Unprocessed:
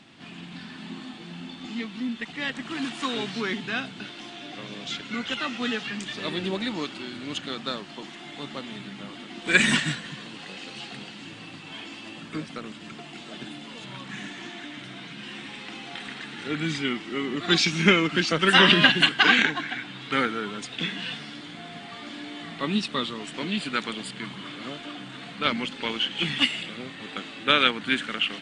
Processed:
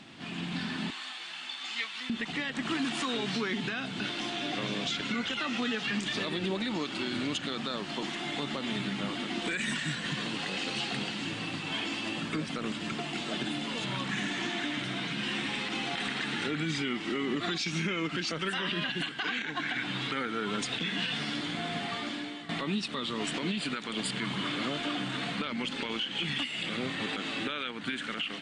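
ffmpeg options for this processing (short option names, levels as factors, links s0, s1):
-filter_complex "[0:a]asettb=1/sr,asplit=3[s0][s1][s2];[s0]atrim=end=0.904[s3];[s1]atrim=start=0.9:end=2.1,asetpts=PTS-STARTPTS,afade=t=in:d=0.004:c=qsin,afade=t=out:st=1.196:d=0.004:c=qsin,highpass=1200[s4];[s2]atrim=start=2.096[s5];[s3][s4]acrossfade=d=0.004:c1=hsin:c2=qsin[s6];[s6][s5]acrossfade=d=0.004:c1=qsin:c2=hsin,asplit=2[s7][s8];[s7]atrim=end=22.49,asetpts=PTS-STARTPTS,afade=t=out:st=21.86:d=0.63:silence=0.177828[s9];[s8]atrim=start=22.49,asetpts=PTS-STARTPTS,afade=t=in:d=0.004:c=hsin:silence=0.177828[s10];[s9][s10]concat=n=2:v=0:a=1,acompressor=threshold=0.0251:ratio=8,alimiter=level_in=1.68:limit=0.0631:level=0:latency=1:release=45,volume=0.596,dynaudnorm=f=230:g=3:m=1.58,volume=1.26"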